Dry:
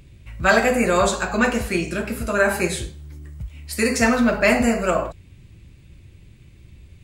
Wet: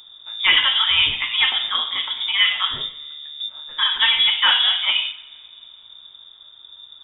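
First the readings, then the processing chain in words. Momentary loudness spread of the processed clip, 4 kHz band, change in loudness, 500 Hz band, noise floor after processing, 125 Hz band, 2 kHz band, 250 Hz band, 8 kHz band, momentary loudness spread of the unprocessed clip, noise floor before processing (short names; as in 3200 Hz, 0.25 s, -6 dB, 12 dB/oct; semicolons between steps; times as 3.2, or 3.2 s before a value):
15 LU, +19.5 dB, +3.0 dB, under -25 dB, -47 dBFS, under -15 dB, +1.0 dB, under -25 dB, under -40 dB, 18 LU, -48 dBFS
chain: two-slope reverb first 0.81 s, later 2.7 s, from -18 dB, DRR 11.5 dB; inverted band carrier 3600 Hz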